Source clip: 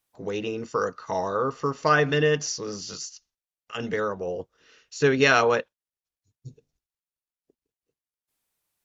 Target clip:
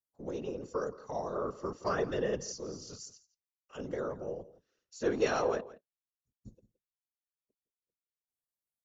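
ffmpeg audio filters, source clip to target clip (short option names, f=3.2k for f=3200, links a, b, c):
-filter_complex "[0:a]agate=range=-10dB:threshold=-52dB:ratio=16:detection=peak,equalizer=f=2.4k:w=0.6:g=-13.5,afftfilt=real='hypot(re,im)*cos(2*PI*random(0))':imag='hypot(re,im)*sin(2*PI*random(1))':win_size=512:overlap=0.75,acrossover=split=330|390|1500[a][b][c][d];[a]asoftclip=type=tanh:threshold=-40dB[e];[e][b][c][d]amix=inputs=4:normalize=0,asplit=2[f][g];[g]adelay=169.1,volume=-18dB,highshelf=f=4k:g=-3.8[h];[f][h]amix=inputs=2:normalize=0"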